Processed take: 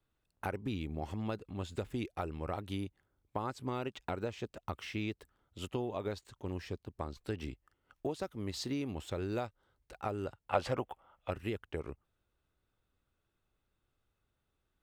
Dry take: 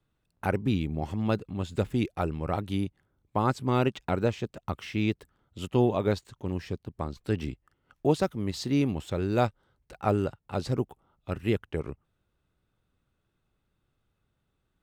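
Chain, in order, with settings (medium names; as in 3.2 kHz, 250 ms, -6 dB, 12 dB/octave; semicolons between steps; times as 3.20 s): peaking EQ 160 Hz -6.5 dB 1.3 oct; compression 12:1, threshold -29 dBFS, peak gain reduction 11 dB; time-frequency box 10.50–11.30 s, 480–3500 Hz +10 dB; trim -3.5 dB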